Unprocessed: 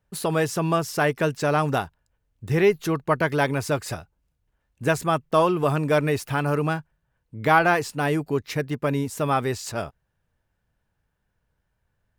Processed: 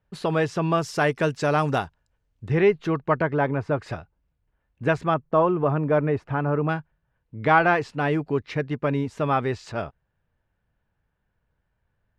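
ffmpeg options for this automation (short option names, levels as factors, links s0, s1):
-af "asetnsamples=n=441:p=0,asendcmd='0.78 lowpass f 6900;2.48 lowpass f 2900;3.22 lowpass f 1500;3.79 lowpass f 2800;5.14 lowpass f 1400;6.69 lowpass f 3200',lowpass=3900"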